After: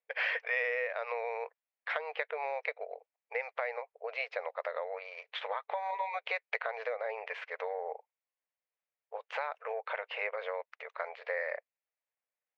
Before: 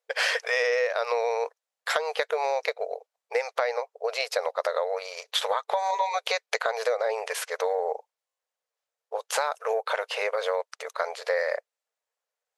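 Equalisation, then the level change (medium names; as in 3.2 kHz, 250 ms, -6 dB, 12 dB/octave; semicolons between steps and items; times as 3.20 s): high-pass 440 Hz 12 dB/octave; four-pole ladder low-pass 2.7 kHz, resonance 45%; peaking EQ 1.4 kHz -3.5 dB 0.77 oct; 0.0 dB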